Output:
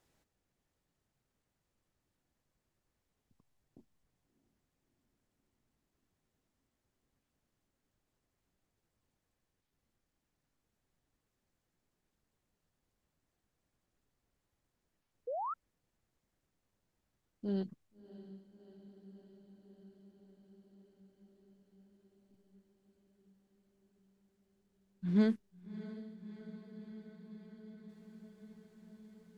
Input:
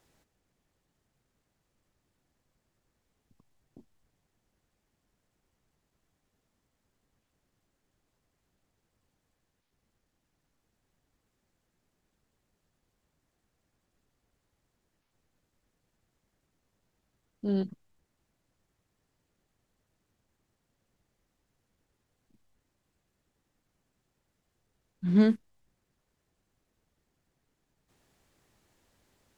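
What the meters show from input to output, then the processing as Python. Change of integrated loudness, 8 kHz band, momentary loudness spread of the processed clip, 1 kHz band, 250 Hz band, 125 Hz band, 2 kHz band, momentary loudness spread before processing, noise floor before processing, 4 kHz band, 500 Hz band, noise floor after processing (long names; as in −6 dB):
−11.0 dB, can't be measured, 24 LU, +8.0 dB, −6.0 dB, −6.0 dB, −6.0 dB, 14 LU, −80 dBFS, −6.0 dB, −5.0 dB, −85 dBFS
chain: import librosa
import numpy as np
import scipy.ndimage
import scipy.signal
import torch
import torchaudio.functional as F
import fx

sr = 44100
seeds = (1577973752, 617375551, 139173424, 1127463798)

y = fx.echo_diffused(x, sr, ms=651, feedback_pct=77, wet_db=-15.0)
y = fx.spec_paint(y, sr, seeds[0], shape='rise', start_s=15.27, length_s=0.27, low_hz=460.0, high_hz=1400.0, level_db=-31.0)
y = y * librosa.db_to_amplitude(-6.5)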